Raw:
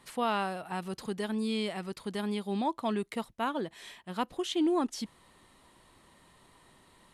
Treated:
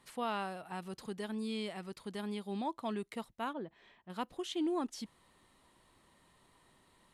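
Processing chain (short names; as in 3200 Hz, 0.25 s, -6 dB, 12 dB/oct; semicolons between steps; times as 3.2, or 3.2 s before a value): 3.53–4.1 tape spacing loss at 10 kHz 33 dB; gain -6.5 dB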